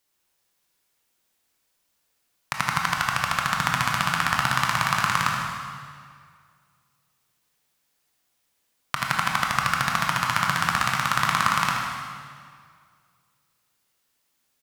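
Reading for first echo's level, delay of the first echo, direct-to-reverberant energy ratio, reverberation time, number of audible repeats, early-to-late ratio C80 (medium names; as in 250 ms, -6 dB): -7.0 dB, 77 ms, -1.5 dB, 2.0 s, 1, 2.5 dB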